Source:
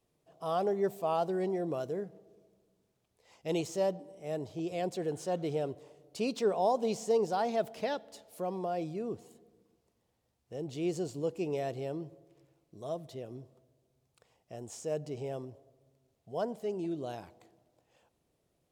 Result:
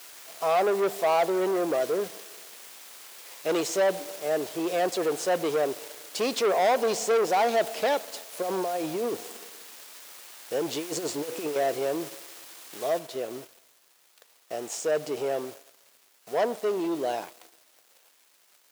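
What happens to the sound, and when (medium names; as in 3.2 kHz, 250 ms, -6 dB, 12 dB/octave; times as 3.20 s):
8.42–11.56 s: compressor with a negative ratio -37 dBFS, ratio -0.5
12.99 s: noise floor step -54 dB -61 dB
whole clip: treble shelf 9.2 kHz -4 dB; waveshaping leveller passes 3; high-pass 400 Hz 12 dB/octave; trim +2 dB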